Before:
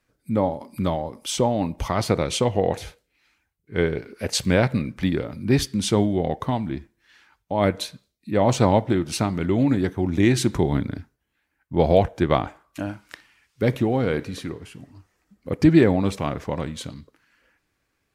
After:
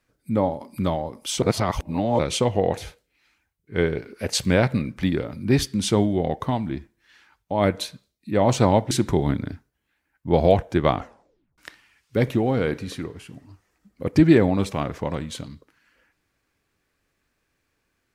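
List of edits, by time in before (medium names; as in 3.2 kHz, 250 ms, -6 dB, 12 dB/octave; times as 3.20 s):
1.42–2.19 s: reverse
8.91–10.37 s: delete
12.42 s: tape stop 0.62 s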